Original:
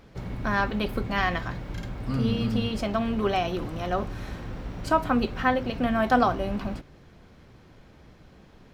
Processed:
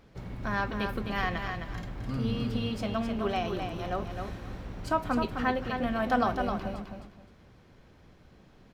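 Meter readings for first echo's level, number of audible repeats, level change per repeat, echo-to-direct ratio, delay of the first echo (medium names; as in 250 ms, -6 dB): -6.0 dB, 3, -12.5 dB, -5.5 dB, 260 ms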